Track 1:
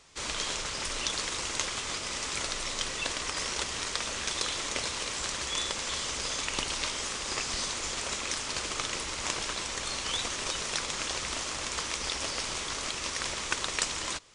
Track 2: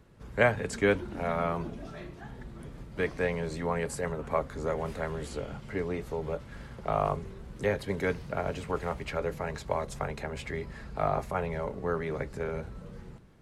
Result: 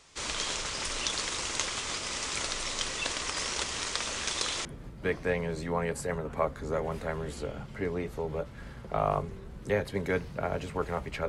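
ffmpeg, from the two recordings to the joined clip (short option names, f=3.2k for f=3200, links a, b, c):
-filter_complex "[0:a]apad=whole_dur=11.28,atrim=end=11.28,atrim=end=4.652[a];[1:a]atrim=start=2.588:end=9.22[b];[a][b]acrossfade=d=0.004:c1=hsin:c2=hsin"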